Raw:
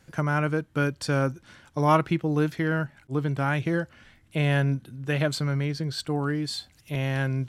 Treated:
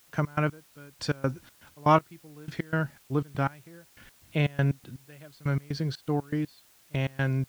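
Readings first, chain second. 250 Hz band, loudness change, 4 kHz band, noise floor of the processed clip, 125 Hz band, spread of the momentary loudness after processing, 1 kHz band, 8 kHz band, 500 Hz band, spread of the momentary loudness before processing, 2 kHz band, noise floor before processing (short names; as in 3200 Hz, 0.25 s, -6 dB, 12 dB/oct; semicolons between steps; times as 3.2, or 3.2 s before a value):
-4.5 dB, -3.0 dB, -7.0 dB, -60 dBFS, -3.5 dB, 19 LU, -1.5 dB, n/a, -4.0 dB, 9 LU, -5.5 dB, -60 dBFS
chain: LPF 6000 Hz 12 dB/oct; step gate ".x.x....x.xx" 121 bpm -24 dB; requantised 10-bit, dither triangular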